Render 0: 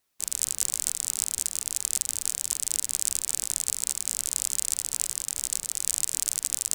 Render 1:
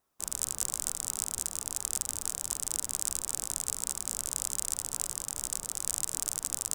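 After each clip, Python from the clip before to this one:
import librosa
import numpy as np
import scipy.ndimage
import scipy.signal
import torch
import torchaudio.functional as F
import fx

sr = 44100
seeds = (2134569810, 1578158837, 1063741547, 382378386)

y = fx.high_shelf_res(x, sr, hz=1600.0, db=-8.0, q=1.5)
y = fx.notch(y, sr, hz=4300.0, q=12.0)
y = F.gain(torch.from_numpy(y), 3.0).numpy()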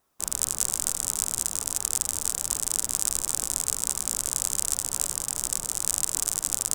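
y = x + 10.0 ** (-12.5 / 20.0) * np.pad(x, (int(293 * sr / 1000.0), 0))[:len(x)]
y = F.gain(torch.from_numpy(y), 6.0).numpy()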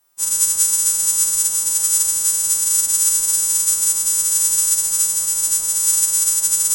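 y = fx.freq_snap(x, sr, grid_st=2)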